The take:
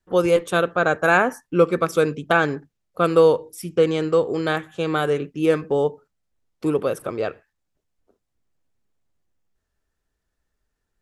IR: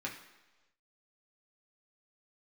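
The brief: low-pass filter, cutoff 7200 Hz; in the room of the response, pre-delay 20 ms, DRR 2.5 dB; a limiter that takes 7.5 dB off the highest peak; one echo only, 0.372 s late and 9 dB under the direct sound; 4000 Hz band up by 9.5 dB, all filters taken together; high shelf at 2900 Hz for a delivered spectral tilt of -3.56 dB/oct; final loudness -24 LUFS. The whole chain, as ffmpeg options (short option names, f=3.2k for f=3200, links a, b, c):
-filter_complex "[0:a]lowpass=7.2k,highshelf=f=2.9k:g=5.5,equalizer=f=4k:t=o:g=8,alimiter=limit=-8dB:level=0:latency=1,aecho=1:1:372:0.355,asplit=2[a][b];[1:a]atrim=start_sample=2205,adelay=20[c];[b][c]afir=irnorm=-1:irlink=0,volume=-4.5dB[d];[a][d]amix=inputs=2:normalize=0,volume=-4dB"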